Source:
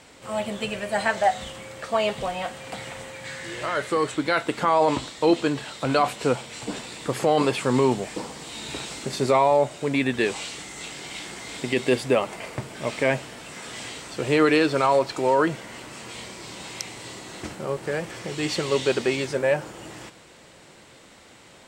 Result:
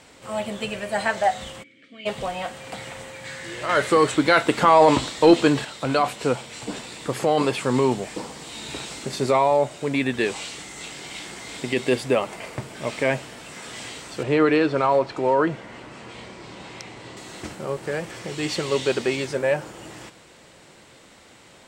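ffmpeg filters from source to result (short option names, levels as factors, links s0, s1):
-filter_complex "[0:a]asplit=3[s0][s1][s2];[s0]afade=t=out:st=1.62:d=0.02[s3];[s1]asplit=3[s4][s5][s6];[s4]bandpass=f=270:t=q:w=8,volume=1[s7];[s5]bandpass=f=2290:t=q:w=8,volume=0.501[s8];[s6]bandpass=f=3010:t=q:w=8,volume=0.355[s9];[s7][s8][s9]amix=inputs=3:normalize=0,afade=t=in:st=1.62:d=0.02,afade=t=out:st=2.05:d=0.02[s10];[s2]afade=t=in:st=2.05:d=0.02[s11];[s3][s10][s11]amix=inputs=3:normalize=0,asettb=1/sr,asplit=3[s12][s13][s14];[s12]atrim=end=3.694[s15];[s13]atrim=start=3.69:end=5.65,asetpts=PTS-STARTPTS,afade=t=in:d=0.004:c=qsin,afade=t=out:st=1.956:d=0.004:c=qsin,acontrast=58[s16];[s14]atrim=start=5.646[s17];[s15][s16]acrossfade=d=0.004:c1=hsin:c2=qsin[s18];[s18][s17]acrossfade=d=0.004:c1=qsin:c2=hsin,asettb=1/sr,asplit=3[s19][s20][s21];[s19]atrim=end=14.234[s22];[s20]atrim=start=14.23:end=17.17,asetpts=PTS-STARTPTS,afade=t=in:d=0.004:c=qsin,afade=t=out:st=2.936:d=0.004:c=qsin,aemphasis=mode=reproduction:type=75fm[s23];[s21]atrim=start=17.166[s24];[s22][s23]acrossfade=d=0.004:c1=hsin:c2=qsin[s25];[s25][s24]acrossfade=d=0.004:c1=qsin:c2=hsin"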